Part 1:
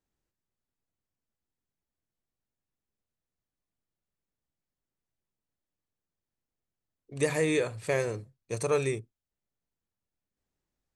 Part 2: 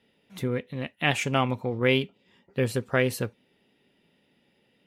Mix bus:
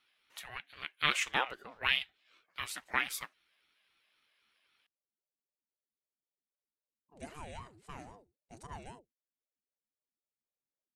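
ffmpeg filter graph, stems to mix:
-filter_complex "[0:a]volume=0.15[s0];[1:a]highpass=f=910:w=0.5412,highpass=f=910:w=1.3066,volume=1[s1];[s0][s1]amix=inputs=2:normalize=0,aeval=exprs='val(0)*sin(2*PI*410*n/s+410*0.5/3.8*sin(2*PI*3.8*n/s))':c=same"

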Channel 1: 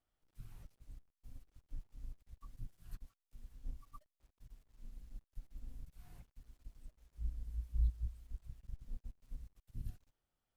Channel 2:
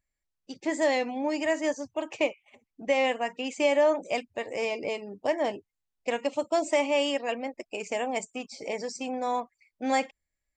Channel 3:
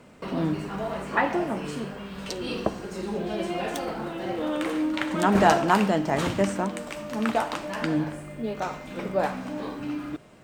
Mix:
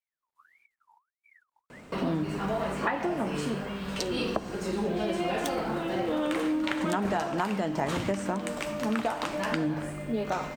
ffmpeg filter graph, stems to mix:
-filter_complex "[0:a]aeval=exprs='val(0)*sin(2*PI*1600*n/s+1600*0.45/1.6*sin(2*PI*1.6*n/s))':c=same,volume=0.335[s0];[2:a]acompressor=threshold=0.0447:ratio=16,adelay=1700,volume=1.33[s1];[s0][s1]amix=inputs=2:normalize=0"

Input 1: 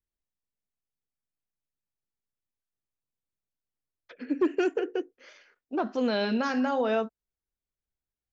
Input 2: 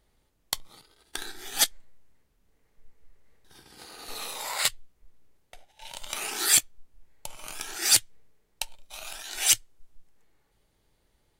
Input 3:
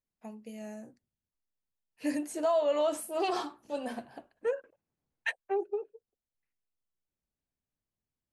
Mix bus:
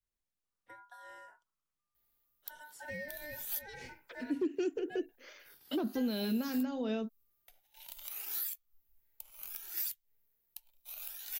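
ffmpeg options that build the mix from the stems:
-filter_complex "[0:a]adynamicequalizer=threshold=0.02:dfrequency=330:dqfactor=0.99:tfrequency=330:tqfactor=0.99:attack=5:release=100:ratio=0.375:range=2:mode=boostabove:tftype=bell,volume=0.891,asplit=2[s0][s1];[1:a]tiltshelf=f=1400:g=-4,acompressor=threshold=0.0562:ratio=6,aexciter=amount=14.3:drive=4.2:freq=12000,adelay=1950,volume=0.168[s2];[2:a]aeval=exprs='val(0)*sin(2*PI*1200*n/s)':c=same,adelay=450,volume=0.473[s3];[s1]apad=whole_len=588317[s4];[s2][s4]sidechaincompress=threshold=0.0251:ratio=8:attack=16:release=147[s5];[s0][s5][s3]amix=inputs=3:normalize=0,acrossover=split=310|3000[s6][s7][s8];[s7]acompressor=threshold=0.00562:ratio=3[s9];[s6][s9][s8]amix=inputs=3:normalize=0,alimiter=level_in=1.19:limit=0.0631:level=0:latency=1:release=403,volume=0.841"

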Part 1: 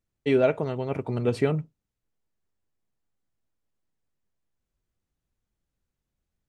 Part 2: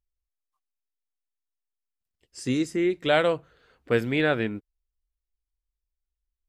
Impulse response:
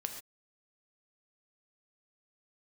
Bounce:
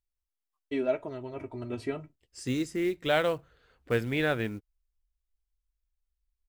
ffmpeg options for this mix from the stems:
-filter_complex "[0:a]agate=range=0.0224:threshold=0.02:ratio=3:detection=peak,aecho=1:1:3.1:0.66,flanger=delay=2:depth=9.8:regen=-54:speed=0.37:shape=sinusoidal,adelay=450,volume=0.501[s0];[1:a]acrusher=bits=7:mode=log:mix=0:aa=0.000001,volume=0.631[s1];[s0][s1]amix=inputs=2:normalize=0,asubboost=boost=2:cutoff=130"

